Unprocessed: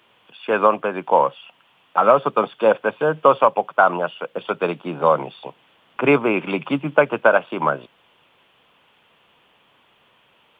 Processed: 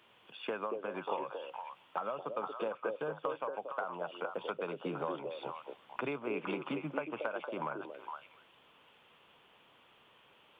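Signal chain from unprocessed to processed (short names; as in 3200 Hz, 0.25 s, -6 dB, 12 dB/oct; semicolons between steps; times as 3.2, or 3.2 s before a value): compressor 12:1, threshold -28 dBFS, peak gain reduction 20.5 dB; delay with a stepping band-pass 0.231 s, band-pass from 410 Hz, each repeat 1.4 oct, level -1 dB; gain -6.5 dB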